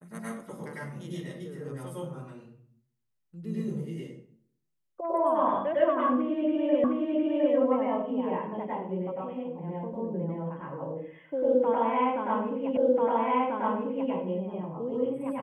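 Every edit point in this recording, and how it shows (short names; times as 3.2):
6.84 repeat of the last 0.71 s
12.77 repeat of the last 1.34 s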